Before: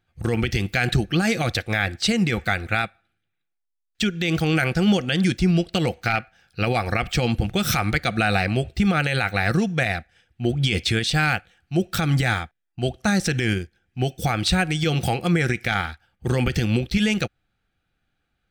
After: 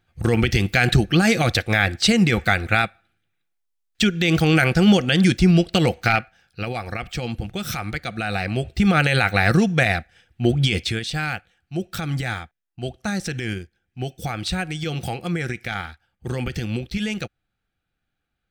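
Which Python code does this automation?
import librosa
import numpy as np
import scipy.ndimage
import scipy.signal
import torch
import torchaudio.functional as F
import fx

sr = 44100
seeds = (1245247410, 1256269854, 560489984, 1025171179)

y = fx.gain(x, sr, db=fx.line((6.12, 4.0), (6.69, -6.0), (8.21, -6.0), (8.99, 4.0), (10.55, 4.0), (11.03, -5.0)))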